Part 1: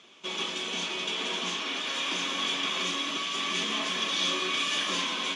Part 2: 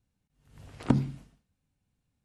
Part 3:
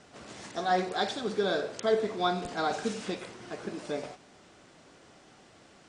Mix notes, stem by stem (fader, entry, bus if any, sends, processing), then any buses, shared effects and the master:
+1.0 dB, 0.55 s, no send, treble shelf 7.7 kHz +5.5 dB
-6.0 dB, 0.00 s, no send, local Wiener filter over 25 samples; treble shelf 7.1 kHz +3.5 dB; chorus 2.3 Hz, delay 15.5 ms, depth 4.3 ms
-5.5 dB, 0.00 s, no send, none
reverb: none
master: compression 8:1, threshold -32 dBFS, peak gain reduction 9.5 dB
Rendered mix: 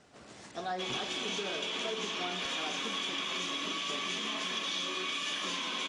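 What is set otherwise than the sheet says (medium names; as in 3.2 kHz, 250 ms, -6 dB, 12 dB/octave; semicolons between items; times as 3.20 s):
stem 1: missing treble shelf 7.7 kHz +5.5 dB; stem 2 -6.0 dB -> -16.0 dB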